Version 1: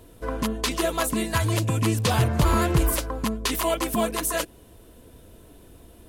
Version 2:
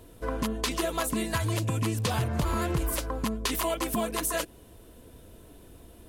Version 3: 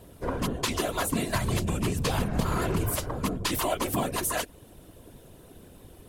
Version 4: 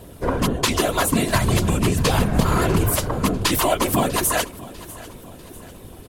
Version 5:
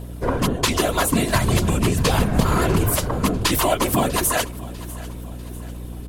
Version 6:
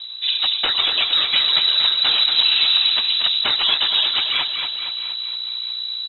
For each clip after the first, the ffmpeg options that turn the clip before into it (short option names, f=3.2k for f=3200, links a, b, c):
-af "acompressor=threshold=-23dB:ratio=6,volume=-1.5dB"
-af "acontrast=80,afftfilt=real='hypot(re,im)*cos(2*PI*random(0))':imag='hypot(re,im)*sin(2*PI*random(1))':win_size=512:overlap=0.75"
-af "aecho=1:1:646|1292|1938|2584:0.112|0.0527|0.0248|0.0116,volume=8.5dB"
-af "aeval=exprs='val(0)+0.0251*(sin(2*PI*60*n/s)+sin(2*PI*2*60*n/s)/2+sin(2*PI*3*60*n/s)/3+sin(2*PI*4*60*n/s)/4+sin(2*PI*5*60*n/s)/5)':c=same"
-filter_complex "[0:a]asplit=2[a][b];[b]aecho=0:1:233|466|699|932|1165|1398|1631:0.501|0.266|0.141|0.0746|0.0395|0.021|0.0111[c];[a][c]amix=inputs=2:normalize=0,lowpass=f=3.4k:t=q:w=0.5098,lowpass=f=3.4k:t=q:w=0.6013,lowpass=f=3.4k:t=q:w=0.9,lowpass=f=3.4k:t=q:w=2.563,afreqshift=-4000"